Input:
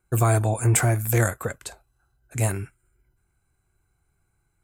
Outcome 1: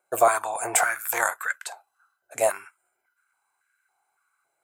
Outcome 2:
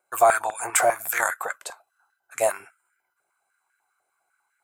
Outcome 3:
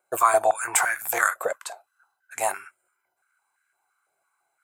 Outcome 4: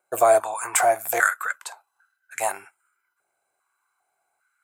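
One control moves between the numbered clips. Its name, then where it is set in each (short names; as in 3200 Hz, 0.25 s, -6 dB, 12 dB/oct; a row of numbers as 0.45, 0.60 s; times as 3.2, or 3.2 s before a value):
stepped high-pass, rate: 3.6, 10, 5.9, 2.5 Hz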